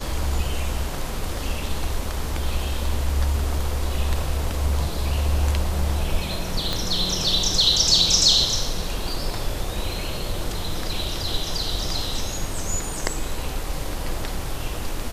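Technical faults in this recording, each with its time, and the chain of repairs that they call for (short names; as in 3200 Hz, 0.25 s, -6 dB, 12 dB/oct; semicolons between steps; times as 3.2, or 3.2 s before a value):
6.73 pop -10 dBFS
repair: de-click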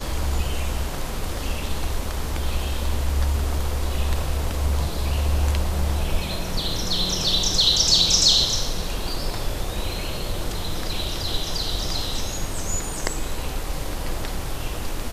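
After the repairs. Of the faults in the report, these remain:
6.73 pop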